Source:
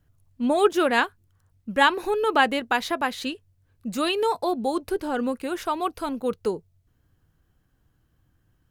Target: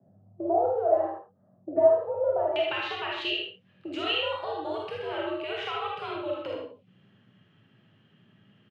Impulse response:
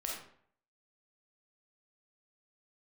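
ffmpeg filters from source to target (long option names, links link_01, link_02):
-filter_complex "[0:a]acompressor=threshold=-39dB:ratio=4,aeval=exprs='(tanh(14.1*val(0)+0.6)-tanh(0.6))/14.1':channel_layout=same,asetnsamples=nb_out_samples=441:pad=0,asendcmd='2.56 lowpass f 2800',lowpass=frequency=560:width_type=q:width=4.9,afreqshift=93,aecho=1:1:77:0.422[link_01];[1:a]atrim=start_sample=2205,afade=type=out:start_time=0.23:duration=0.01,atrim=end_sample=10584[link_02];[link_01][link_02]afir=irnorm=-1:irlink=0,volume=7dB"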